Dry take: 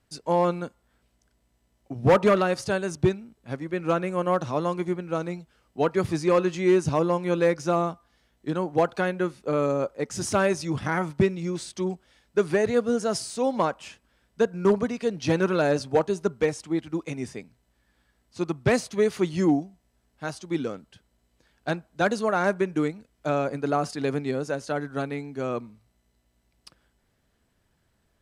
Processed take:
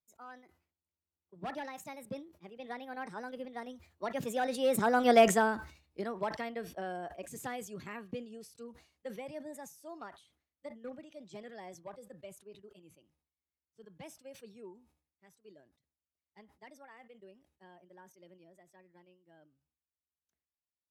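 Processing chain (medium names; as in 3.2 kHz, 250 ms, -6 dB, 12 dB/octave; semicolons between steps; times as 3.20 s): Doppler pass-by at 6.98 s, 21 m/s, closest 4.6 m; speed mistake 33 rpm record played at 45 rpm; in parallel at +2 dB: compression, threshold -44 dBFS, peak gain reduction 24 dB; on the sum: spectral noise reduction 8 dB; decay stretcher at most 120 dB/s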